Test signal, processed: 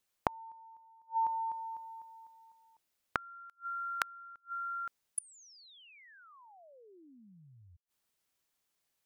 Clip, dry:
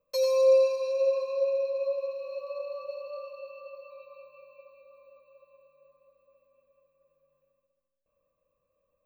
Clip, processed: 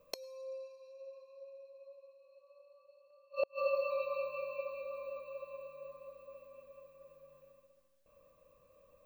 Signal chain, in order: flipped gate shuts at -33 dBFS, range -37 dB; gain +12 dB

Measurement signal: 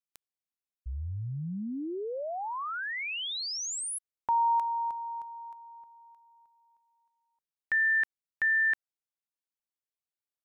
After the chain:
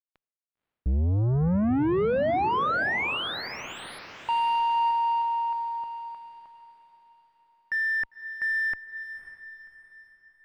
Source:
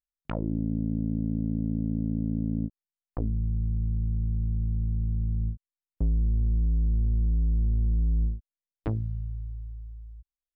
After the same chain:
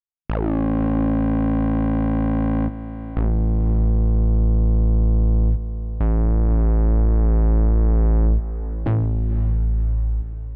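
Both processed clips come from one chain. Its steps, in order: added harmonics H 2 -27 dB, 5 -8 dB, 6 -37 dB, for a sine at -18.5 dBFS; gate with hold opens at -46 dBFS, range -17 dB; sample leveller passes 3; air absorption 460 m; diffused feedback echo 0.54 s, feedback 45%, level -11.5 dB

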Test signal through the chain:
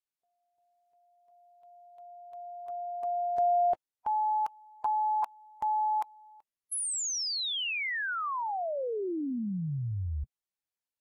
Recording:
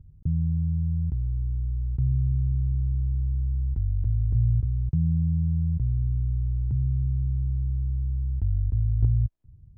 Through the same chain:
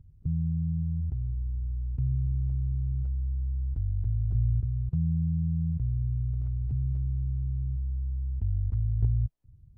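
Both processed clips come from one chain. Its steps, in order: bin magnitudes rounded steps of 15 dB; gain -3.5 dB; AAC 48 kbps 48000 Hz

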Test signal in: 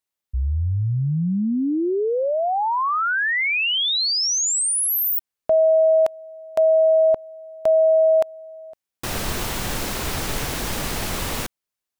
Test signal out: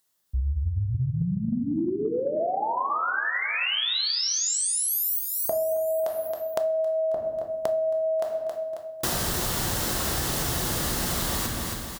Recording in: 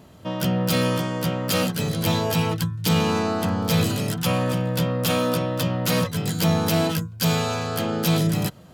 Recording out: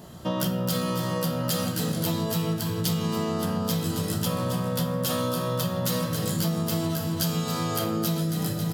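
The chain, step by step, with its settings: high shelf 4300 Hz +6 dB; shoebox room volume 190 m³, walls mixed, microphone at 0.89 m; upward compressor 1.5:1, threshold -58 dBFS; HPF 41 Hz; bell 2400 Hz -8.5 dB 0.31 oct; on a send: feedback echo 0.271 s, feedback 50%, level -11 dB; on the sum: compressor 10:1, threshold -25 dBFS; gain +1.5 dB

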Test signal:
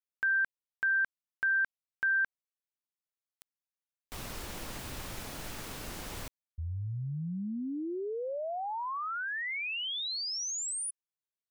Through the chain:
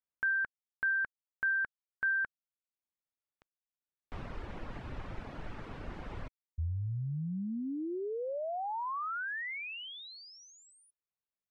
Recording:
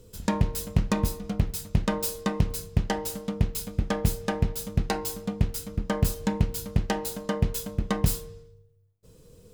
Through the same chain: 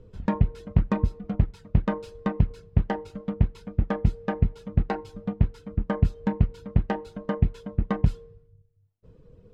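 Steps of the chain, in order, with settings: reverb removal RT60 0.61 s; LPF 1900 Hz 12 dB/oct; low shelf 160 Hz +4 dB

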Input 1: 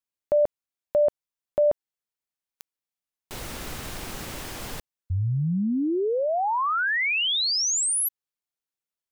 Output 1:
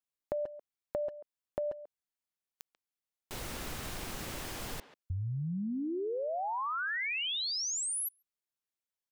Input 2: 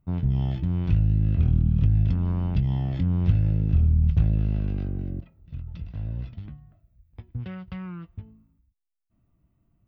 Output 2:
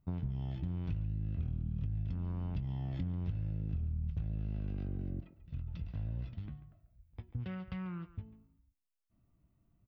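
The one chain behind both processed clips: compressor 6:1, threshold -29 dBFS; speakerphone echo 0.14 s, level -13 dB; gain -4.5 dB

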